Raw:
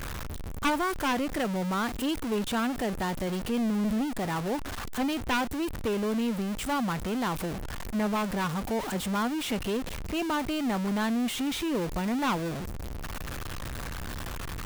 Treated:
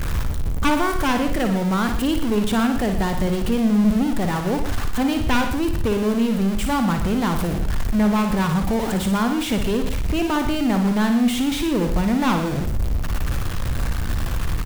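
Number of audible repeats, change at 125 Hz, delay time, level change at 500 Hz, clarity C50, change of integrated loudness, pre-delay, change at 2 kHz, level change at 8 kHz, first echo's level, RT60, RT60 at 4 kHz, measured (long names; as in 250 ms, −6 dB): 3, +12.0 dB, 57 ms, +7.5 dB, no reverb audible, +9.0 dB, no reverb audible, +6.0 dB, +6.0 dB, −7.5 dB, no reverb audible, no reverb audible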